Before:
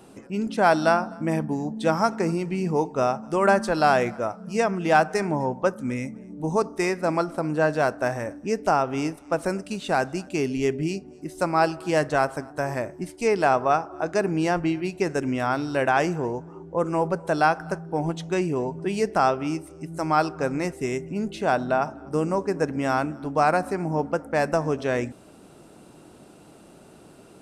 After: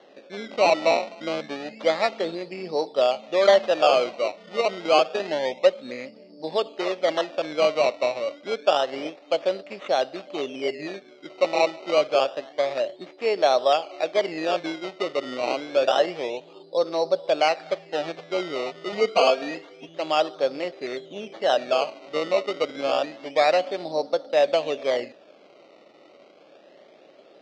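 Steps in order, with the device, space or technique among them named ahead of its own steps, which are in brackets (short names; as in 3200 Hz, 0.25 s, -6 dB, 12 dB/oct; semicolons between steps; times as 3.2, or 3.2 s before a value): circuit-bent sampling toy (decimation with a swept rate 18×, swing 100% 0.28 Hz; speaker cabinet 460–4800 Hz, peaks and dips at 570 Hz +10 dB, 960 Hz -7 dB, 1500 Hz -7 dB); 18.92–19.89 comb 4.3 ms, depth 97%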